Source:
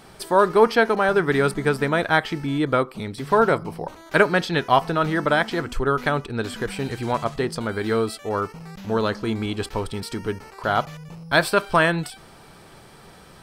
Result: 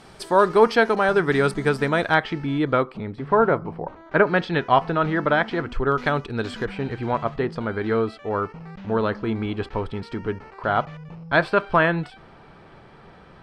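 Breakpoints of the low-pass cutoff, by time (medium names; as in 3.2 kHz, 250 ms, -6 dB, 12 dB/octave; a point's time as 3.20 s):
8.3 kHz
from 2.14 s 3.6 kHz
from 2.97 s 1.7 kHz
from 4.27 s 2.9 kHz
from 5.92 s 5.3 kHz
from 6.65 s 2.5 kHz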